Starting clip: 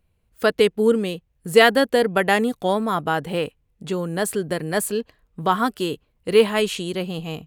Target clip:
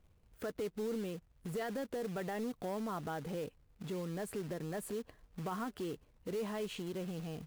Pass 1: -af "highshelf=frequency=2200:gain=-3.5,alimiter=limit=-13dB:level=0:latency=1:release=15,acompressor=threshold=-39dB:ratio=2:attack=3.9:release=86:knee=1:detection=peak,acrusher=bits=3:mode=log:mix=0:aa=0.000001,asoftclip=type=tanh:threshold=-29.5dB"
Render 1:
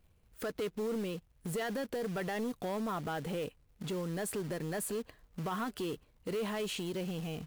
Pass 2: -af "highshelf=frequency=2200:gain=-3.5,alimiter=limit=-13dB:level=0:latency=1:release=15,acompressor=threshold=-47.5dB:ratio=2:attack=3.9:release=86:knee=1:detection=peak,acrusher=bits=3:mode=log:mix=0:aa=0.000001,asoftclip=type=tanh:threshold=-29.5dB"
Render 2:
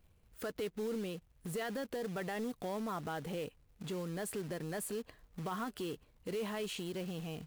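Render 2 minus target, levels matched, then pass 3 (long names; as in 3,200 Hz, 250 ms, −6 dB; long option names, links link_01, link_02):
4,000 Hz band +3.5 dB
-af "highshelf=frequency=2200:gain=-14,alimiter=limit=-13dB:level=0:latency=1:release=15,acompressor=threshold=-47.5dB:ratio=2:attack=3.9:release=86:knee=1:detection=peak,acrusher=bits=3:mode=log:mix=0:aa=0.000001,asoftclip=type=tanh:threshold=-29.5dB"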